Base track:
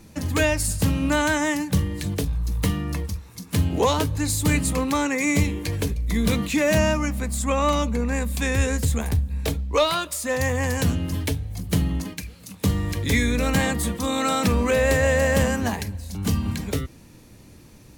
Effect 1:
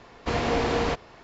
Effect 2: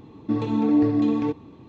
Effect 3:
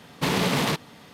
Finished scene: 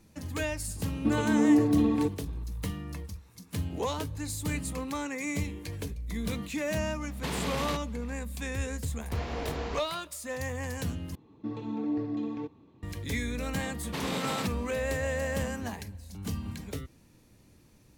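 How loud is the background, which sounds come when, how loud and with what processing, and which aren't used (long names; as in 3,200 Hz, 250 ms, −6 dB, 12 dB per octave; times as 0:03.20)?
base track −11.5 dB
0:00.76: mix in 2 −3 dB
0:07.01: mix in 3 −10 dB
0:08.85: mix in 1 −11.5 dB
0:11.15: overwrite with 2 −12 dB
0:13.71: mix in 3 −10.5 dB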